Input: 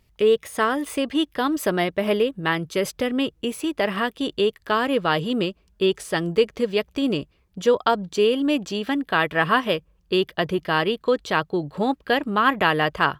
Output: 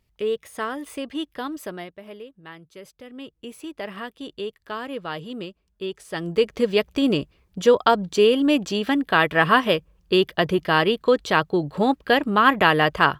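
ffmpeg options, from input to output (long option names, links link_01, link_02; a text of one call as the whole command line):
ffmpeg -i in.wav -af "volume=14.5dB,afade=type=out:start_time=1.38:duration=0.63:silence=0.251189,afade=type=in:start_time=3.03:duration=0.55:silence=0.354813,afade=type=in:start_time=6.04:duration=0.63:silence=0.237137" out.wav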